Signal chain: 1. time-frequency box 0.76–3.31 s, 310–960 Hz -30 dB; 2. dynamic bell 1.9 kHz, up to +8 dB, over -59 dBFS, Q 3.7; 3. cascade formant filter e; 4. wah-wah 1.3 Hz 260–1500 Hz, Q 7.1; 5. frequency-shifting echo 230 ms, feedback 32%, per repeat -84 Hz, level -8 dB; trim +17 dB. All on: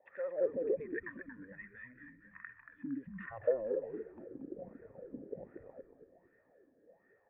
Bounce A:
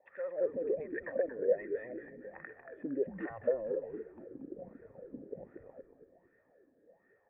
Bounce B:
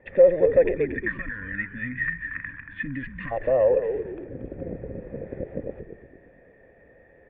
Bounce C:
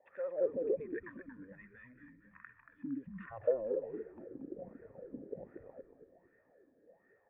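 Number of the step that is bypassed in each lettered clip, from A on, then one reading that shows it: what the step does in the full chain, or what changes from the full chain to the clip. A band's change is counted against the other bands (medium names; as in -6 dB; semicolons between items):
1, crest factor change -1.5 dB; 4, crest factor change -2.5 dB; 2, 2 kHz band -6.0 dB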